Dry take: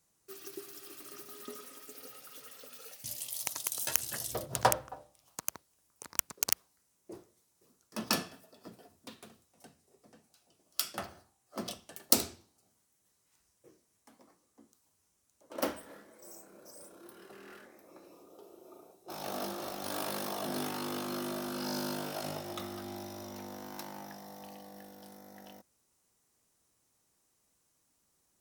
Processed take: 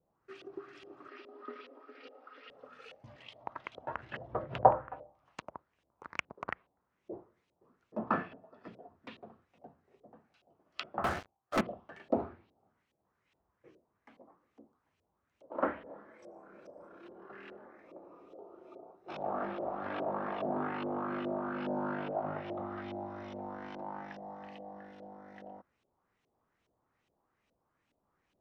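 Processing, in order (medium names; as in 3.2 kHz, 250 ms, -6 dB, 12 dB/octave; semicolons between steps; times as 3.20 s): low-pass that closes with the level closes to 2.1 kHz, closed at -35 dBFS; 1.08–2.51 s: Chebyshev band-pass 250–5100 Hz, order 4; LFO low-pass saw up 2.4 Hz 520–3100 Hz; 11.04–11.61 s: waveshaping leveller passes 5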